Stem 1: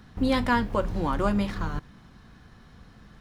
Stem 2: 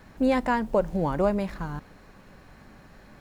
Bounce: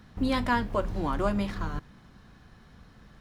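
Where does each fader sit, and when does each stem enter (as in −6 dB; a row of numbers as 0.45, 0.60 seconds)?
−2.5, −15.0 decibels; 0.00, 0.00 seconds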